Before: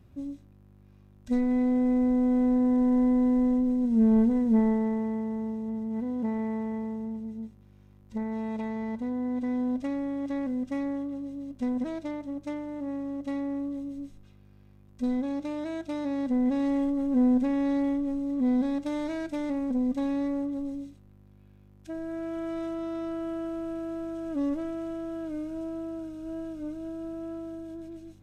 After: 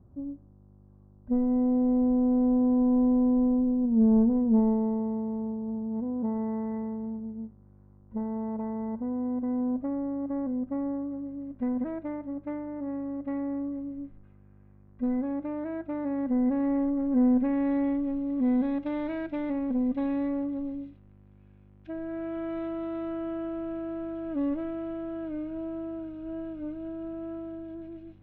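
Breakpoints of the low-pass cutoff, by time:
low-pass 24 dB/octave
6.09 s 1.1 kHz
6.78 s 1.8 kHz
7.29 s 1.3 kHz
10.88 s 1.3 kHz
11.48 s 1.9 kHz
16.93 s 1.9 kHz
18.13 s 3 kHz

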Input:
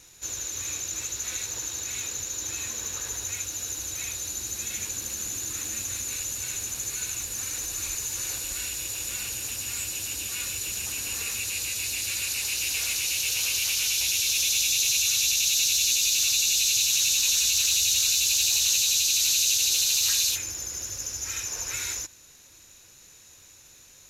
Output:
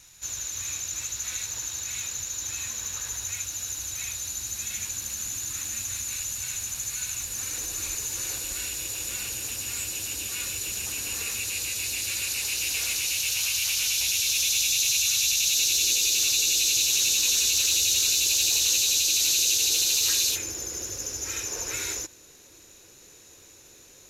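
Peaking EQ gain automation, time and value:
peaking EQ 390 Hz 1.3 oct
7.08 s -9 dB
7.59 s +2 dB
12.96 s +2 dB
13.55 s -8.5 dB
13.81 s -1 dB
15.29 s -1 dB
15.84 s +10 dB

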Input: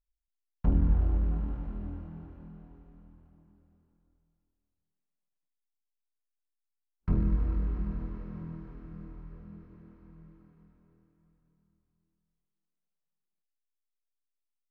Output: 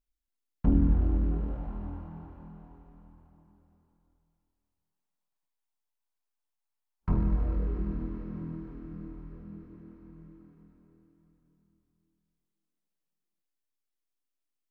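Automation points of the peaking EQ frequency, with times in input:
peaking EQ +9 dB 0.79 oct
1.24 s 270 Hz
1.74 s 910 Hz
7.19 s 910 Hz
7.99 s 290 Hz

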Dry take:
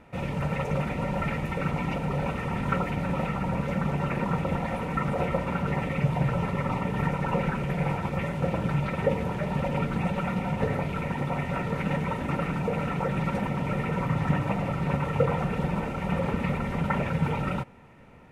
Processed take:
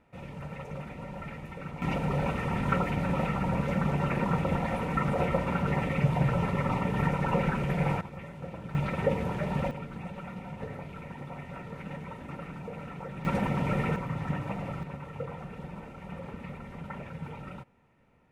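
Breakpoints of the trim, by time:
-11.5 dB
from 1.82 s -0.5 dB
from 8.01 s -13 dB
from 8.75 s -2 dB
from 9.71 s -12 dB
from 13.25 s 0 dB
from 13.96 s -7 dB
from 14.83 s -13.5 dB

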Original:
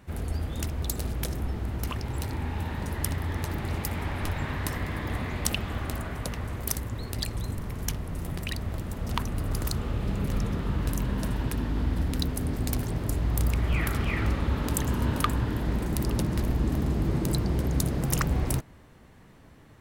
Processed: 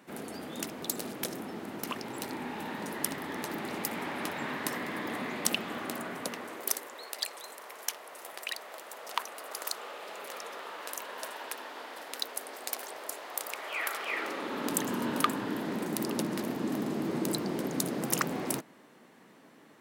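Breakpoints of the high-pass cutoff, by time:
high-pass 24 dB/octave
6.20 s 210 Hz
7.09 s 530 Hz
13.98 s 530 Hz
14.75 s 210 Hz

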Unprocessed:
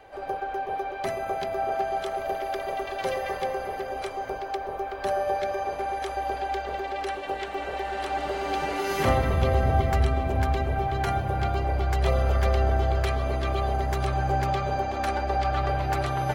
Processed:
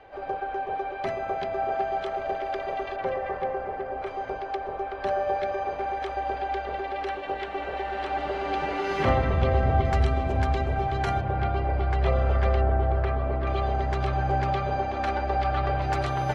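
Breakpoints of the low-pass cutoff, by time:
3.7 kHz
from 2.96 s 1.8 kHz
from 4.07 s 3.6 kHz
from 9.85 s 6.5 kHz
from 11.21 s 2.9 kHz
from 12.61 s 1.7 kHz
from 13.47 s 4 kHz
from 15.82 s 7.1 kHz

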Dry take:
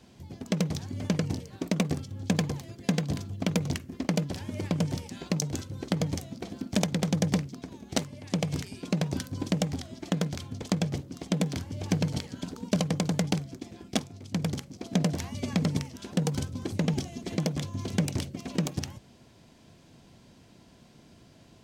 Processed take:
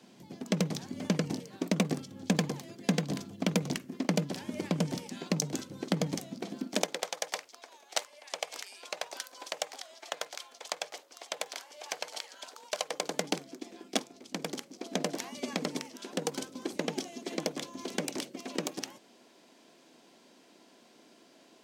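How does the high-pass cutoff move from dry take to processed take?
high-pass 24 dB/octave
6.57 s 170 Hz
7.11 s 610 Hz
12.78 s 610 Hz
13.23 s 270 Hz

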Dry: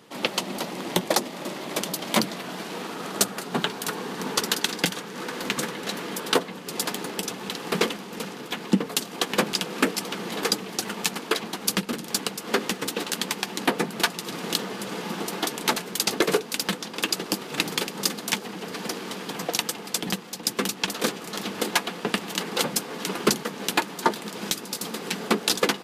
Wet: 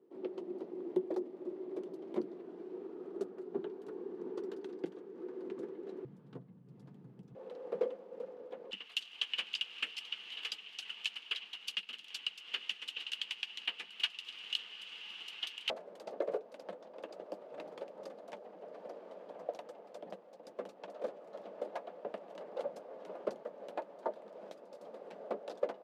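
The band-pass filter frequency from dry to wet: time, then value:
band-pass filter, Q 8.9
370 Hz
from 6.05 s 130 Hz
from 7.35 s 520 Hz
from 8.71 s 2.9 kHz
from 15.70 s 590 Hz

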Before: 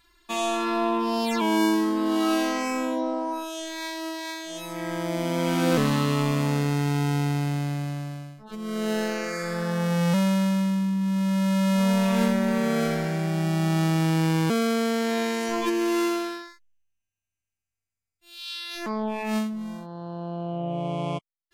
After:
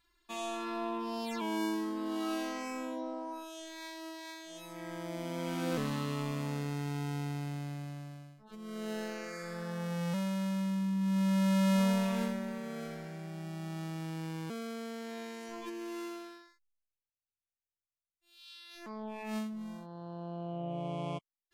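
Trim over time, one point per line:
10.31 s -12 dB
11.19 s -5 dB
11.76 s -5 dB
12.62 s -17 dB
18.64 s -17 dB
19.61 s -8.5 dB

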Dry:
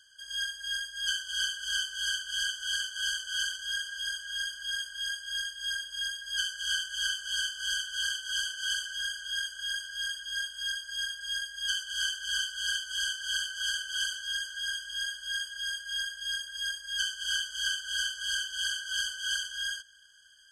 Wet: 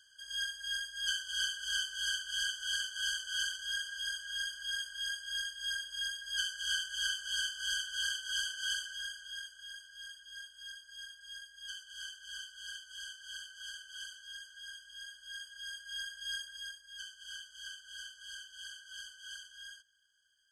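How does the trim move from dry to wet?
8.66 s -3.5 dB
9.70 s -14 dB
15.01 s -14 dB
16.40 s -5 dB
16.86 s -15.5 dB

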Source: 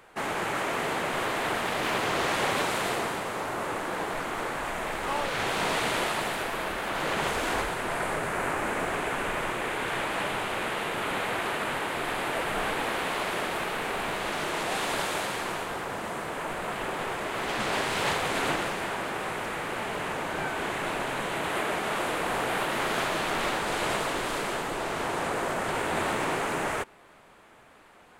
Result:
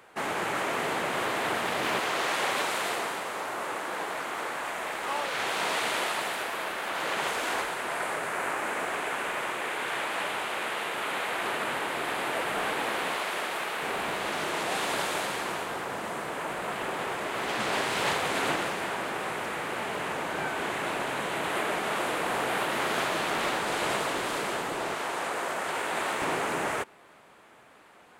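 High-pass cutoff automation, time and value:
high-pass 6 dB/octave
130 Hz
from 1.99 s 510 Hz
from 11.41 s 220 Hz
from 13.16 s 550 Hz
from 13.82 s 140 Hz
from 24.94 s 560 Hz
from 26.22 s 140 Hz

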